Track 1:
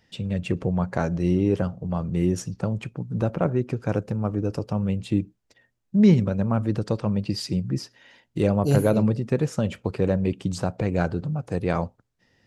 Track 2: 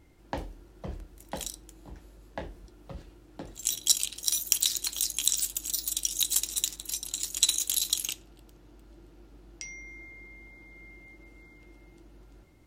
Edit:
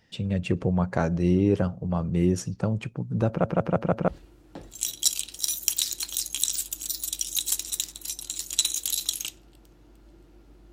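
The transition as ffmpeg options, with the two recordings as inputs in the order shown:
-filter_complex "[0:a]apad=whole_dur=10.72,atrim=end=10.72,asplit=5[s0][s1][s2][s3][s4];[s0]atrim=end=3.442[s5];[s1]atrim=start=3.278:end=3.442[s6];[s2]atrim=start=3.278:end=3.442[s7];[s3]atrim=start=3.278:end=3.442[s8];[s4]atrim=start=3.278:end=3.442[s9];[1:a]atrim=start=2.918:end=9.56[s10];[s5][s6]acrossfade=d=0.004:c1=hsin:c2=hsin[s11];[s11][s7]acrossfade=d=0.004:c1=hsin:c2=hsin[s12];[s12][s8]acrossfade=d=0.004:c1=hsin:c2=hsin[s13];[s13][s9]acrossfade=d=0.004:c1=hsin:c2=hsin[s14];[s14][s10]acrossfade=d=0.004:c1=hsin:c2=hsin"

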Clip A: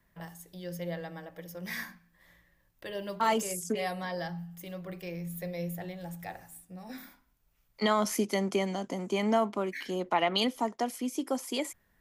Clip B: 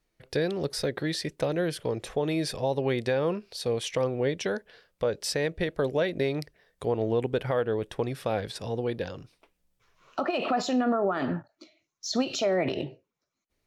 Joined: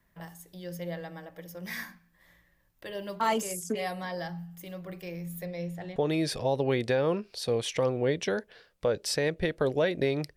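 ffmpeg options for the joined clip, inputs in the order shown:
-filter_complex "[0:a]asettb=1/sr,asplit=3[s0][s1][s2];[s0]atrim=end=5.454[s3];[s1]atrim=start=5.45:end=5.96,asetpts=PTS-STARTPTS,afade=t=in:d=0.004:c=qsin,afade=t=out:st=0.506:d=0.004:c=qsin,lowpass=6700[s4];[s2]atrim=start=5.956[s5];[s3][s4]acrossfade=d=0.004:c1=hsin:c2=qsin[s6];[s6][s5]acrossfade=d=0.004:c1=qsin:c2=hsin,apad=whole_dur=10.36,atrim=end=10.36,atrim=end=5.962[s7];[1:a]atrim=start=2.138:end=6.54[s8];[s7][s8]acrossfade=d=0.004:c1=hsin:c2=hsin"

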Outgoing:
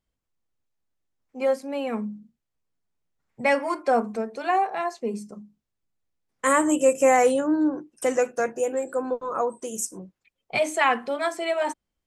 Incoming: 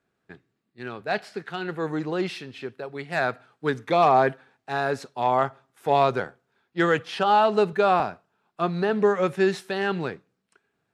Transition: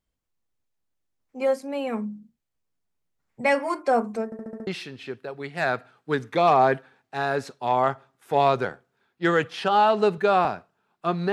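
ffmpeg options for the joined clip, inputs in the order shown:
-filter_complex "[0:a]apad=whole_dur=11.32,atrim=end=11.32,asplit=6[s0][s1][s2][s3][s4][s5];[s0]atrim=end=4.322[s6];[s1]atrim=start=4.248:end=4.322[s7];[s2]atrim=start=4.248:end=4.322[s8];[s3]atrim=start=4.248:end=4.322[s9];[s4]atrim=start=4.248:end=4.322[s10];[s5]atrim=start=4.248:end=4.322[s11];[1:a]atrim=start=2.218:end=8.87[s12];[s6][s7]acrossfade=d=0.004:c1=hsin:c2=hsin[s13];[s13][s8]acrossfade=d=0.004:c1=hsin:c2=hsin[s14];[s14][s9]acrossfade=d=0.004:c1=hsin:c2=hsin[s15];[s15][s10]acrossfade=d=0.004:c1=hsin:c2=hsin[s16];[s16][s11]acrossfade=d=0.004:c1=hsin:c2=hsin[s17];[s17][s12]acrossfade=d=0.004:c1=hsin:c2=hsin"

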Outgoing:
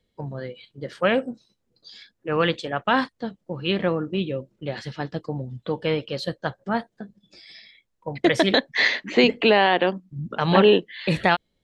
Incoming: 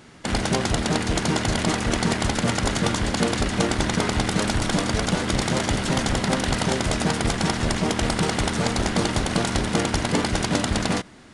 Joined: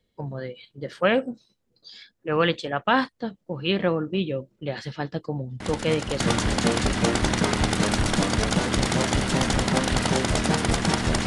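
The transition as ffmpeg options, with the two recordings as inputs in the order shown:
-filter_complex "[1:a]asplit=2[s0][s1];[0:a]apad=whole_dur=11.26,atrim=end=11.26,atrim=end=6.202[s2];[s1]atrim=start=2.758:end=7.82[s3];[s0]atrim=start=2.16:end=2.76,asetpts=PTS-STARTPTS,volume=0.355,afade=t=in:d=0.004:c=hsin,afade=t=out:st=0.596:d=0.004:c=hsin,adelay=5600[s4];[s2][s3]acrossfade=d=0.004:c1=hsin:c2=hsin[s5];[s5][s4]amix=inputs=2:normalize=0"

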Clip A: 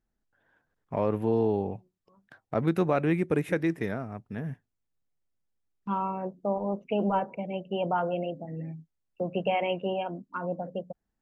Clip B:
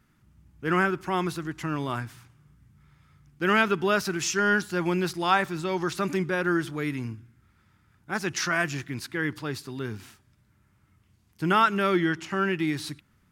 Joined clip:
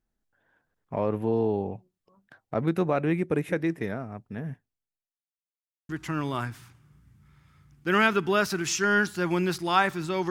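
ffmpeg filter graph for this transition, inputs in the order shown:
-filter_complex "[0:a]apad=whole_dur=10.3,atrim=end=10.3,asplit=2[s0][s1];[s0]atrim=end=5.22,asetpts=PTS-STARTPTS,afade=t=out:st=4.55:d=0.67:c=qua[s2];[s1]atrim=start=5.22:end=5.89,asetpts=PTS-STARTPTS,volume=0[s3];[1:a]atrim=start=1.44:end=5.85,asetpts=PTS-STARTPTS,afade=t=in:d=0.004:c=hsin[s4];[s2][s3][s4]concat=n=3:v=0:a=1"

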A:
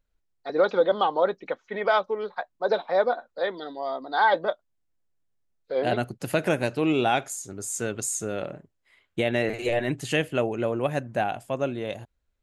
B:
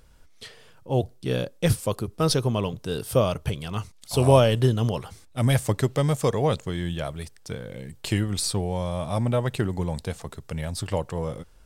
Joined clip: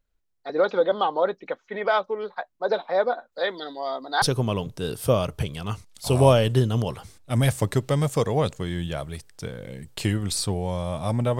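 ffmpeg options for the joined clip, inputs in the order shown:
-filter_complex "[0:a]asettb=1/sr,asplit=3[s0][s1][s2];[s0]atrim=end=3.324[s3];[s1]atrim=start=3.32:end=4.22,asetpts=PTS-STARTPTS,afade=t=in:d=0.004:c=qsin,afade=t=out:st=0.896:d=0.004:c=qsin,highshelf=f=2000:g=8.5[s4];[s2]atrim=start=4.216[s5];[s3][s4]acrossfade=d=0.004:c1=hsin:c2=qsin[s6];[s6][s5]acrossfade=d=0.004:c1=qsin:c2=hsin,apad=whole_dur=11.39,atrim=end=11.39,atrim=end=4.222[s7];[1:a]atrim=start=2.288:end=9.46[s8];[s7][s8]acrossfade=d=0.004:c1=hsin:c2=hsin"

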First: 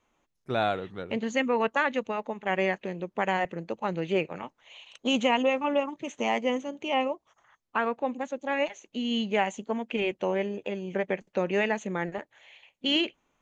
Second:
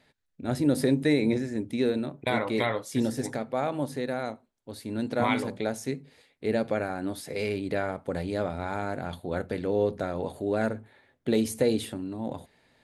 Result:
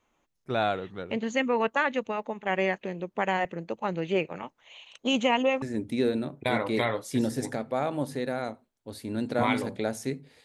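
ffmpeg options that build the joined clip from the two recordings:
-filter_complex "[0:a]apad=whole_dur=10.44,atrim=end=10.44,atrim=end=5.622[s0];[1:a]atrim=start=1.428:end=6.25[s1];[s0][s1]acrossfade=d=0.004:c1=hsin:c2=hsin"

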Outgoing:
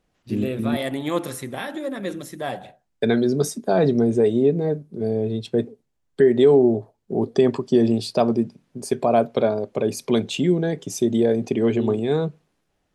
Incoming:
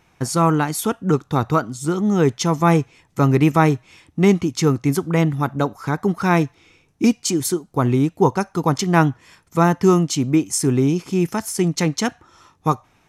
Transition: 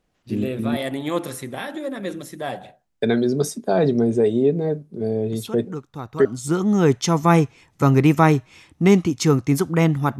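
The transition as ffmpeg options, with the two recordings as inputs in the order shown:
-filter_complex "[1:a]asplit=2[s0][s1];[0:a]apad=whole_dur=10.19,atrim=end=10.19,atrim=end=6.252[s2];[s1]atrim=start=1.618:end=5.56[s3];[s0]atrim=start=0.69:end=1.62,asetpts=PTS-STARTPTS,volume=0.211,afade=t=in:d=0.004:c=hsin,afade=t=out:st=0.926:d=0.004:c=hsin,adelay=5320[s4];[s2][s3]acrossfade=d=0.004:c1=hsin:c2=hsin[s5];[s5][s4]amix=inputs=2:normalize=0"

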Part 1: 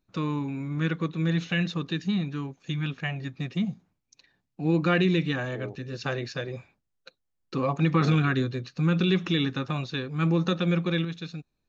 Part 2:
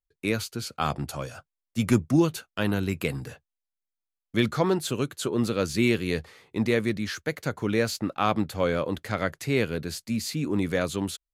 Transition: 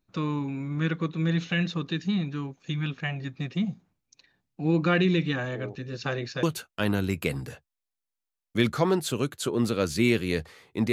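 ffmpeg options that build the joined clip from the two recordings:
-filter_complex "[0:a]apad=whole_dur=10.92,atrim=end=10.92,atrim=end=6.432[s0];[1:a]atrim=start=2.218:end=6.71[s1];[s0][s1]acrossfade=d=0.004:c1=hsin:c2=hsin"

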